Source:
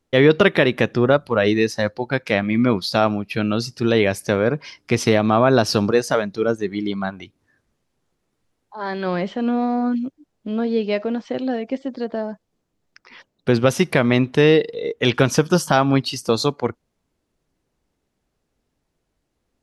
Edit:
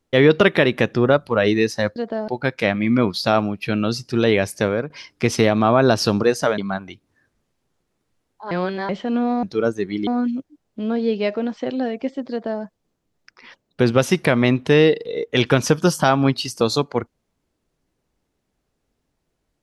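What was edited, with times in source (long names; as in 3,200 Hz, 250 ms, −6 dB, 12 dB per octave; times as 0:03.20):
0:04.24–0:04.58: fade out equal-power, to −13.5 dB
0:06.26–0:06.90: move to 0:09.75
0:08.83–0:09.21: reverse
0:11.98–0:12.30: duplicate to 0:01.96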